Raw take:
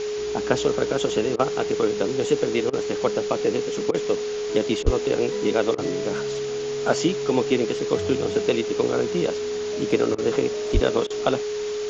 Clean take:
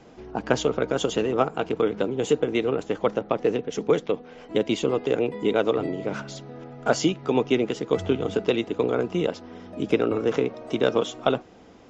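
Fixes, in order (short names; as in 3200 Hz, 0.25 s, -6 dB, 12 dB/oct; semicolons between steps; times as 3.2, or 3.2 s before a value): notch 420 Hz, Q 30; de-plosive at 4.84/10.73; interpolate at 1.36/2.7/3.91/4.83/5.75/10.15/11.07, 31 ms; noise print and reduce 16 dB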